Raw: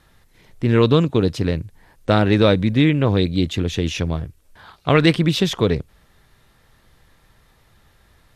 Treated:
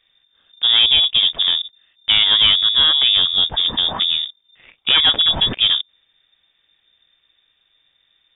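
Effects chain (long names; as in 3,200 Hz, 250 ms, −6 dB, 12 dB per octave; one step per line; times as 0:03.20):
leveller curve on the samples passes 2
voice inversion scrambler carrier 3,600 Hz
level −4.5 dB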